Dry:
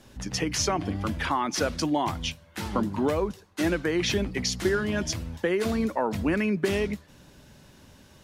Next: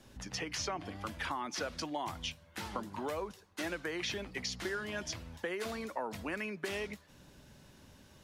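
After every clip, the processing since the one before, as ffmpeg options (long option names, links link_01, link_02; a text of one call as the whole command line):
ffmpeg -i in.wav -filter_complex "[0:a]acrossover=split=510|5500[link_01][link_02][link_03];[link_01]acompressor=threshold=-40dB:ratio=4[link_04];[link_02]acompressor=threshold=-30dB:ratio=4[link_05];[link_03]acompressor=threshold=-45dB:ratio=4[link_06];[link_04][link_05][link_06]amix=inputs=3:normalize=0,volume=-5.5dB" out.wav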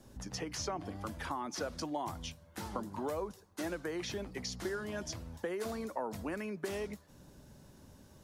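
ffmpeg -i in.wav -af "equalizer=frequency=2600:width_type=o:width=1.8:gain=-10,volume=2dB" out.wav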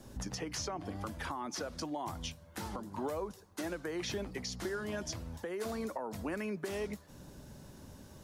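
ffmpeg -i in.wav -af "alimiter=level_in=9dB:limit=-24dB:level=0:latency=1:release=486,volume=-9dB,volume=5dB" out.wav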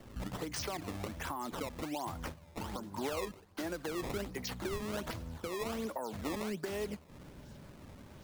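ffmpeg -i in.wav -af "acrusher=samples=17:mix=1:aa=0.000001:lfo=1:lforange=27.2:lforate=1.3" out.wav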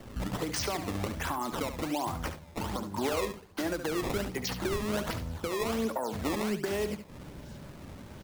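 ffmpeg -i in.wav -af "aecho=1:1:71:0.316,volume=6dB" out.wav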